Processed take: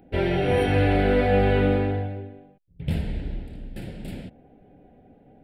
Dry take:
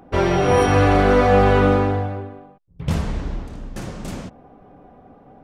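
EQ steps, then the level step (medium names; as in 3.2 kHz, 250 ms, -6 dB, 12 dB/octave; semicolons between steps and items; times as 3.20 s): dynamic bell 1.2 kHz, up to +4 dB, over -30 dBFS, Q 0.91; static phaser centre 2.7 kHz, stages 4; -4.0 dB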